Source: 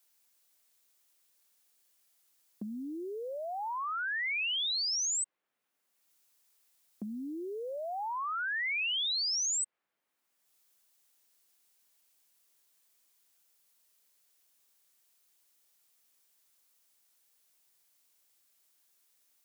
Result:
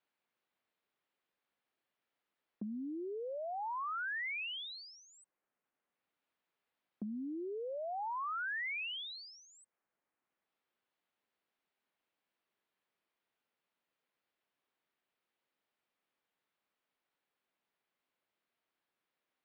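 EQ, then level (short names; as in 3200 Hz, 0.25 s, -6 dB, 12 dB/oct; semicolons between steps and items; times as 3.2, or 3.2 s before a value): air absorption 470 m; -1.0 dB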